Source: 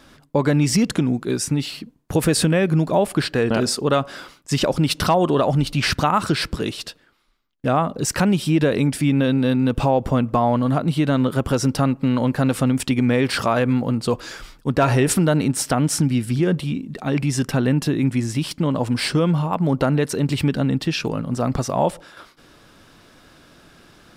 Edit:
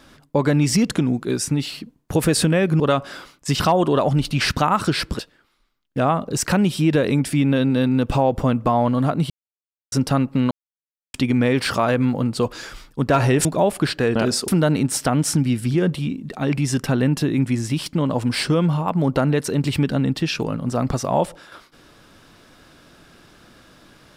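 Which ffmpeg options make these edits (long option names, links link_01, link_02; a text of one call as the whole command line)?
ffmpeg -i in.wav -filter_complex "[0:a]asplit=10[link_01][link_02][link_03][link_04][link_05][link_06][link_07][link_08][link_09][link_10];[link_01]atrim=end=2.802[link_11];[link_02]atrim=start=3.828:end=4.632[link_12];[link_03]atrim=start=5.018:end=6.612[link_13];[link_04]atrim=start=6.868:end=10.98,asetpts=PTS-STARTPTS,afade=type=out:start_time=4.108:duration=0.004:curve=hsin[link_14];[link_05]atrim=start=10.98:end=11.6,asetpts=PTS-STARTPTS,volume=0[link_15];[link_06]atrim=start=11.6:end=12.19,asetpts=PTS-STARTPTS,afade=type=in:duration=0.004:curve=hsin,afade=type=out:start_time=0.586:duration=0.004:curve=hsin[link_16];[link_07]atrim=start=12.19:end=12.82,asetpts=PTS-STARTPTS,volume=0[link_17];[link_08]atrim=start=12.82:end=15.132,asetpts=PTS-STARTPTS,afade=type=in:duration=0.004:curve=hsin[link_18];[link_09]atrim=start=2.798:end=3.832[link_19];[link_10]atrim=start=15.128[link_20];[link_11][link_12]acrossfade=duration=0.004:curve1=hsin:curve2=hsin[link_21];[link_21][link_13]acrossfade=duration=0.004:curve1=hsin:curve2=hsin[link_22];[link_14][link_15][link_16][link_17][link_18]concat=n=5:v=0:a=1[link_23];[link_22][link_23]acrossfade=duration=0.004:curve1=hsin:curve2=hsin[link_24];[link_24][link_19]acrossfade=duration=0.004:curve1=hsin:curve2=hsin[link_25];[link_25][link_20]acrossfade=duration=0.004:curve1=hsin:curve2=hsin" out.wav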